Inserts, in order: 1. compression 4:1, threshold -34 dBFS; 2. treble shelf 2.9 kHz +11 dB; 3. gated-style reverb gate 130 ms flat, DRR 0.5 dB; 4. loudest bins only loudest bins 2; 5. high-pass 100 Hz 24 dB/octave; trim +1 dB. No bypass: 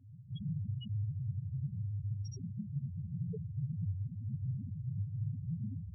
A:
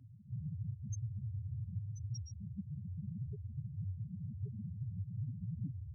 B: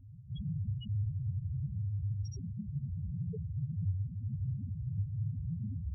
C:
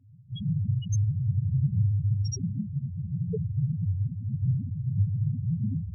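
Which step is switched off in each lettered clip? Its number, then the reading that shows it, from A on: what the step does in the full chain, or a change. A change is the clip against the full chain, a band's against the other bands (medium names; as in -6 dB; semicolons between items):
3, loudness change -4.0 LU; 5, loudness change +2.0 LU; 1, mean gain reduction 9.5 dB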